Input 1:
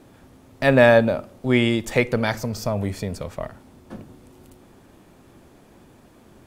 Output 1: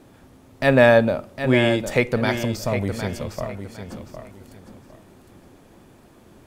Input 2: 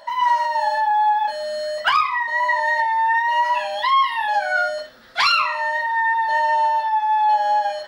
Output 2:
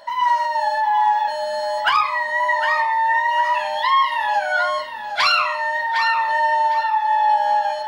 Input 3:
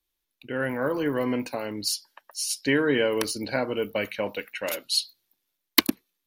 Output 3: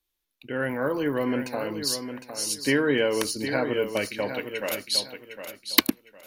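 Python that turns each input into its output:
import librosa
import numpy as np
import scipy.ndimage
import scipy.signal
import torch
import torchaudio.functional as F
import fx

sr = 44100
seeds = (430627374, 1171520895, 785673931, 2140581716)

y = fx.echo_feedback(x, sr, ms=758, feedback_pct=26, wet_db=-9.0)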